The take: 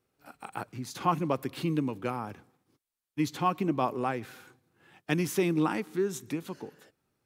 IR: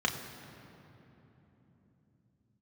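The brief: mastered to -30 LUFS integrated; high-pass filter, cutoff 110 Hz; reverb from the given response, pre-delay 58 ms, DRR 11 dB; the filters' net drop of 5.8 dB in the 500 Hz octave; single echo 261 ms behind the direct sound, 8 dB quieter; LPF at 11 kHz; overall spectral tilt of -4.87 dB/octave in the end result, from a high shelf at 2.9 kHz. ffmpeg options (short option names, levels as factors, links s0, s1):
-filter_complex "[0:a]highpass=110,lowpass=11000,equalizer=f=500:t=o:g=-8.5,highshelf=f=2900:g=-8,aecho=1:1:261:0.398,asplit=2[s0][s1];[1:a]atrim=start_sample=2205,adelay=58[s2];[s1][s2]afir=irnorm=-1:irlink=0,volume=0.1[s3];[s0][s3]amix=inputs=2:normalize=0,volume=1.58"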